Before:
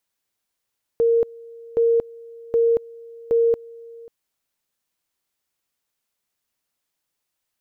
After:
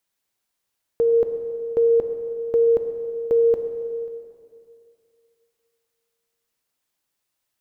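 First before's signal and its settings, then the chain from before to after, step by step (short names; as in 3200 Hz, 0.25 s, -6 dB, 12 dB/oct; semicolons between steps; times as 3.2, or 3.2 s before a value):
two-level tone 463 Hz -14 dBFS, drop 23.5 dB, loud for 0.23 s, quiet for 0.54 s, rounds 4
plate-style reverb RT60 2.5 s, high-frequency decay 0.85×, DRR 5.5 dB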